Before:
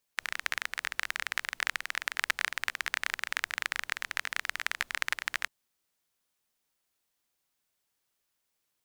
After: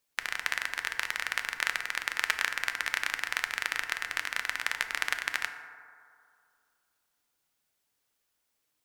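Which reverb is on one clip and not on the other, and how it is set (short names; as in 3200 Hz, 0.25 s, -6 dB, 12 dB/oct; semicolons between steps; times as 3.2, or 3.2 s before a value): FDN reverb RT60 2.3 s, low-frequency decay 0.7×, high-frequency decay 0.3×, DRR 6.5 dB; gain +1 dB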